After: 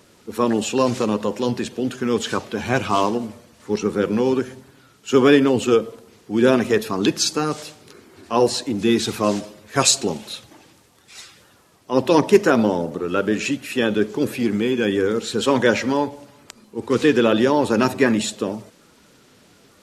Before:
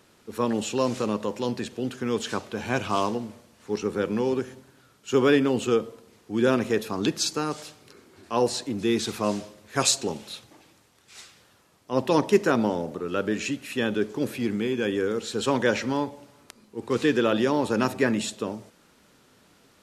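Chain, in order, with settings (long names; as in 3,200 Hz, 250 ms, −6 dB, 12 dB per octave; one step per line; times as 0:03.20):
spectral magnitudes quantised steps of 15 dB
level +6.5 dB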